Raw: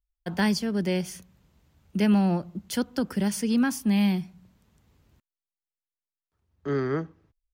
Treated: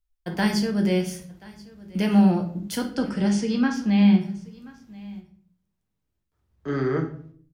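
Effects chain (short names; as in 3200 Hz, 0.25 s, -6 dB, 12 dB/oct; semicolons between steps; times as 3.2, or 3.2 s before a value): 2.85–4.2 LPF 9800 Hz -> 4200 Hz 24 dB/oct; echo 1.031 s -22 dB; shoebox room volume 62 m³, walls mixed, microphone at 0.54 m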